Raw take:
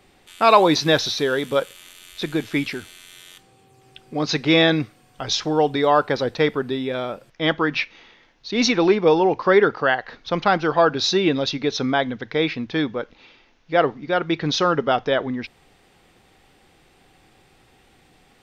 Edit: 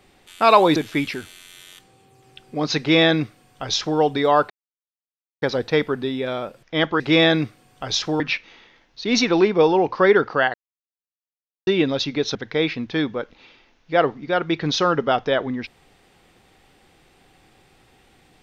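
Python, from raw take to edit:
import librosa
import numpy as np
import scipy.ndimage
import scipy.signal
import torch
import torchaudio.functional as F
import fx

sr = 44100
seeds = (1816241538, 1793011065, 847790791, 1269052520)

y = fx.edit(x, sr, fx.cut(start_s=0.76, length_s=1.59),
    fx.duplicate(start_s=4.38, length_s=1.2, to_s=7.67),
    fx.insert_silence(at_s=6.09, length_s=0.92),
    fx.silence(start_s=10.01, length_s=1.13),
    fx.cut(start_s=11.82, length_s=0.33), tone=tone)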